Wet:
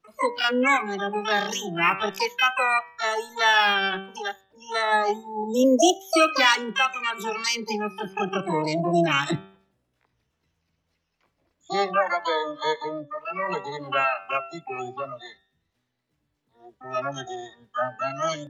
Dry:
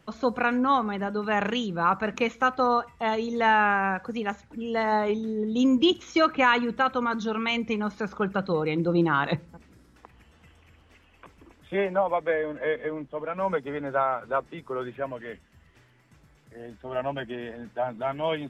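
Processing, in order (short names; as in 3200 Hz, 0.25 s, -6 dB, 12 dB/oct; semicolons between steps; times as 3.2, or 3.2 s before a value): block floating point 7-bit; spectral noise reduction 21 dB; de-hum 96.59 Hz, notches 19; harmoniser +12 st 0 dB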